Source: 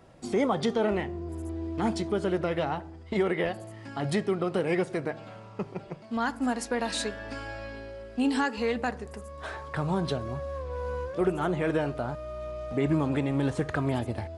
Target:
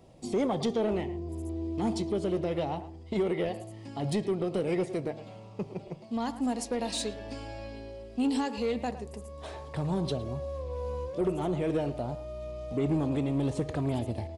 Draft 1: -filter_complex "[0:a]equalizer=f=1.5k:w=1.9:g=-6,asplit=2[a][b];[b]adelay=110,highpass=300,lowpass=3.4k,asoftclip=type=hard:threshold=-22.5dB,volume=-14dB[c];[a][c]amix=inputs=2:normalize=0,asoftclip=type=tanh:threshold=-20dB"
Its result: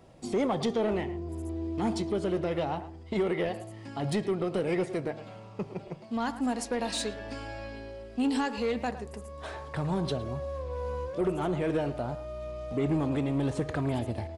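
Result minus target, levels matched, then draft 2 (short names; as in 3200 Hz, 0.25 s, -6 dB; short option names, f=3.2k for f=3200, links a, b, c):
2000 Hz band +4.5 dB
-filter_complex "[0:a]equalizer=f=1.5k:w=1.9:g=-15.5,asplit=2[a][b];[b]adelay=110,highpass=300,lowpass=3.4k,asoftclip=type=hard:threshold=-22.5dB,volume=-14dB[c];[a][c]amix=inputs=2:normalize=0,asoftclip=type=tanh:threshold=-20dB"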